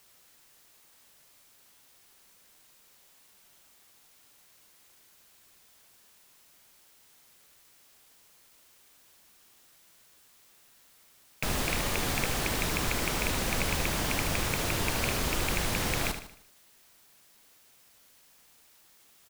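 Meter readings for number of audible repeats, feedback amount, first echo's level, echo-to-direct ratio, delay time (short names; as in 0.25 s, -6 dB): 4, 43%, -9.0 dB, -8.0 dB, 76 ms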